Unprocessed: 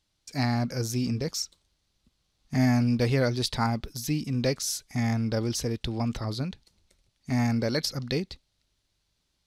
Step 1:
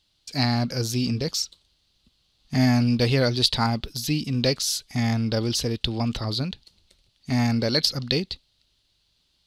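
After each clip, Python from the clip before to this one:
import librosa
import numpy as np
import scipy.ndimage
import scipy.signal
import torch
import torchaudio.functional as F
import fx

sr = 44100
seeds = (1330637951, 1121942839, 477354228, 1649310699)

y = fx.band_shelf(x, sr, hz=3600.0, db=8.0, octaves=1.0)
y = y * 10.0 ** (3.0 / 20.0)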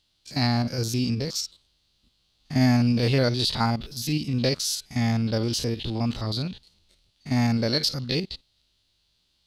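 y = fx.spec_steps(x, sr, hold_ms=50)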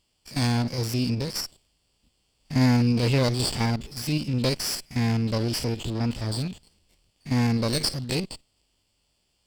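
y = fx.lower_of_two(x, sr, delay_ms=0.39)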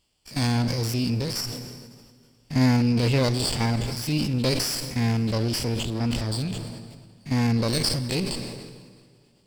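y = fx.rev_plate(x, sr, seeds[0], rt60_s=3.2, hf_ratio=0.8, predelay_ms=0, drr_db=14.5)
y = fx.sustainer(y, sr, db_per_s=35.0)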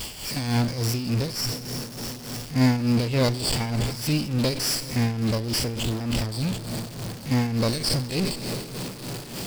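y = x + 0.5 * 10.0 ** (-26.0 / 20.0) * np.sign(x)
y = y * (1.0 - 0.64 / 2.0 + 0.64 / 2.0 * np.cos(2.0 * np.pi * 3.4 * (np.arange(len(y)) / sr)))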